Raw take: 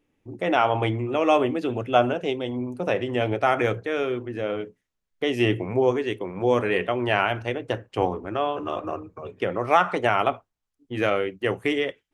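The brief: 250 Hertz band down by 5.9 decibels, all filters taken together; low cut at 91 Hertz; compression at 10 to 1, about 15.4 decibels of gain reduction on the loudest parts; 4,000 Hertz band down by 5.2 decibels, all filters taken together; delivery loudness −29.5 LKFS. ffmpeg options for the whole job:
ffmpeg -i in.wav -af "highpass=91,equalizer=frequency=250:width_type=o:gain=-8.5,equalizer=frequency=4000:width_type=o:gain=-8,acompressor=threshold=-29dB:ratio=10,volume=5.5dB" out.wav

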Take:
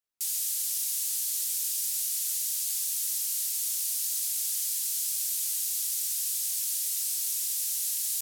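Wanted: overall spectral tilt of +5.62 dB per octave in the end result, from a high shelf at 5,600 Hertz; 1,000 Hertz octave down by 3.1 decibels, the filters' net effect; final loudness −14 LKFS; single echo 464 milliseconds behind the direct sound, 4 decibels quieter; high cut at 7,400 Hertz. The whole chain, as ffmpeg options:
ffmpeg -i in.wav -af "lowpass=7400,equalizer=frequency=1000:width_type=o:gain=-4.5,highshelf=frequency=5600:gain=3.5,aecho=1:1:464:0.631,volume=15.5dB" out.wav

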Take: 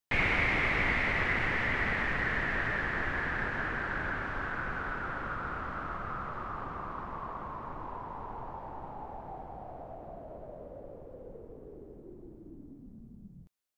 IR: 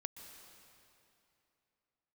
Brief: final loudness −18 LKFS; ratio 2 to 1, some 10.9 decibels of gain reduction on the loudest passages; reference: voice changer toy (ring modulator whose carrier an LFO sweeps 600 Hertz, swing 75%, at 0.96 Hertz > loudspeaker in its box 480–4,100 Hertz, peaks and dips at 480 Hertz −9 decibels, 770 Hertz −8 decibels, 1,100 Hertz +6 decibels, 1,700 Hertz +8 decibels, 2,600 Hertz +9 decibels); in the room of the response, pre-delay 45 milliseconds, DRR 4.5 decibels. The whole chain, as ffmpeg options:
-filter_complex "[0:a]acompressor=threshold=-45dB:ratio=2,asplit=2[link_01][link_02];[1:a]atrim=start_sample=2205,adelay=45[link_03];[link_02][link_03]afir=irnorm=-1:irlink=0,volume=-1.5dB[link_04];[link_01][link_04]amix=inputs=2:normalize=0,aeval=exprs='val(0)*sin(2*PI*600*n/s+600*0.75/0.96*sin(2*PI*0.96*n/s))':channel_layout=same,highpass=480,equalizer=frequency=480:width_type=q:width=4:gain=-9,equalizer=frequency=770:width_type=q:width=4:gain=-8,equalizer=frequency=1100:width_type=q:width=4:gain=6,equalizer=frequency=1700:width_type=q:width=4:gain=8,equalizer=frequency=2600:width_type=q:width=4:gain=9,lowpass=frequency=4100:width=0.5412,lowpass=frequency=4100:width=1.3066,volume=20.5dB"

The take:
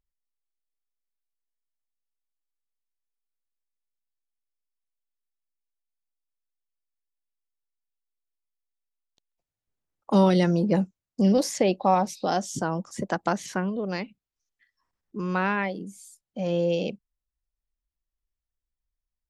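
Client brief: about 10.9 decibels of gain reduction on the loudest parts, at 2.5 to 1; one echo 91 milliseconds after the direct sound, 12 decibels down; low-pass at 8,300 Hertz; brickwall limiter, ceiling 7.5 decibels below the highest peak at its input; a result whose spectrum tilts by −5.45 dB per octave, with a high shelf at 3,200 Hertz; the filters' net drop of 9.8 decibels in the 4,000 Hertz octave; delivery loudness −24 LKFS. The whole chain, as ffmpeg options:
ffmpeg -i in.wav -af "lowpass=8300,highshelf=frequency=3200:gain=-8.5,equalizer=frequency=4000:width_type=o:gain=-6.5,acompressor=threshold=-33dB:ratio=2.5,alimiter=level_in=1dB:limit=-24dB:level=0:latency=1,volume=-1dB,aecho=1:1:91:0.251,volume=12dB" out.wav

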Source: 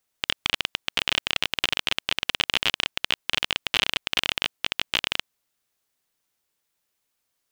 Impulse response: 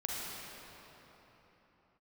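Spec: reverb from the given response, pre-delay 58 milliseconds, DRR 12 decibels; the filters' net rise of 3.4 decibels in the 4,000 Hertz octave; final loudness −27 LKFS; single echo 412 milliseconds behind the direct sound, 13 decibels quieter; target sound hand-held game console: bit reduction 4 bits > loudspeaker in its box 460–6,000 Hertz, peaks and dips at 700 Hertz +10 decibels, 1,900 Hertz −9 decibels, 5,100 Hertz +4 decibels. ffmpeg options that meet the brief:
-filter_complex "[0:a]equalizer=frequency=4000:width_type=o:gain=5,aecho=1:1:412:0.224,asplit=2[link_01][link_02];[1:a]atrim=start_sample=2205,adelay=58[link_03];[link_02][link_03]afir=irnorm=-1:irlink=0,volume=-16dB[link_04];[link_01][link_04]amix=inputs=2:normalize=0,acrusher=bits=3:mix=0:aa=0.000001,highpass=460,equalizer=frequency=700:width_type=q:width=4:gain=10,equalizer=frequency=1900:width_type=q:width=4:gain=-9,equalizer=frequency=5100:width_type=q:width=4:gain=4,lowpass=frequency=6000:width=0.5412,lowpass=frequency=6000:width=1.3066,volume=-4.5dB"

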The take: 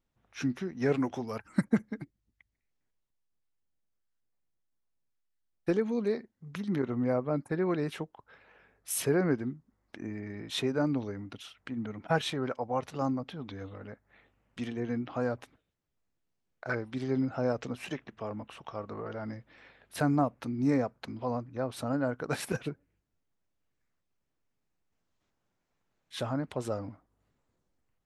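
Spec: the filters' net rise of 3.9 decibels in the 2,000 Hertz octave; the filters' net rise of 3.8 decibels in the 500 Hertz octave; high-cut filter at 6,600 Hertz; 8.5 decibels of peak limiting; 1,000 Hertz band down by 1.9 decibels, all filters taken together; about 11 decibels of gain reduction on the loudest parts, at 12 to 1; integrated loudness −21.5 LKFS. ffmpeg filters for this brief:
ffmpeg -i in.wav -af "lowpass=6600,equalizer=frequency=500:width_type=o:gain=6,equalizer=frequency=1000:width_type=o:gain=-8,equalizer=frequency=2000:width_type=o:gain=8.5,acompressor=threshold=-30dB:ratio=12,volume=17dB,alimiter=limit=-10dB:level=0:latency=1" out.wav

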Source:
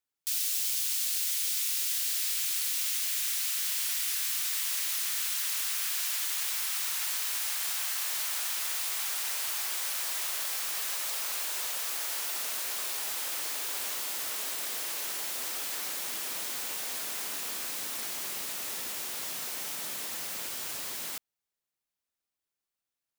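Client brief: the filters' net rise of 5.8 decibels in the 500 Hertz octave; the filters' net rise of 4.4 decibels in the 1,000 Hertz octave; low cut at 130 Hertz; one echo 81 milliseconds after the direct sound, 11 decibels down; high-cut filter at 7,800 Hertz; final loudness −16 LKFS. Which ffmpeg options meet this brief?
ffmpeg -i in.wav -af "highpass=130,lowpass=7800,equalizer=frequency=500:width_type=o:gain=6,equalizer=frequency=1000:width_type=o:gain=4,aecho=1:1:81:0.282,volume=18dB" out.wav

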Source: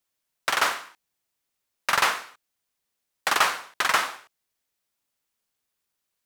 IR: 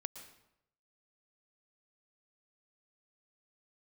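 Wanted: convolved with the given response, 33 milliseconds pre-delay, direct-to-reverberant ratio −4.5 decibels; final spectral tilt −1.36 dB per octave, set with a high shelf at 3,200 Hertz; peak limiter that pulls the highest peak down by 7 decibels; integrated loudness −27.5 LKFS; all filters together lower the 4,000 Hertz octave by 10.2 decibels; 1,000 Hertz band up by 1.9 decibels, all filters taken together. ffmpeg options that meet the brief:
-filter_complex "[0:a]equalizer=frequency=1000:width_type=o:gain=4,highshelf=frequency=3200:gain=-8.5,equalizer=frequency=4000:width_type=o:gain=-8,alimiter=limit=-14dB:level=0:latency=1,asplit=2[link_01][link_02];[1:a]atrim=start_sample=2205,adelay=33[link_03];[link_02][link_03]afir=irnorm=-1:irlink=0,volume=7dB[link_04];[link_01][link_04]amix=inputs=2:normalize=0,volume=-4.5dB"

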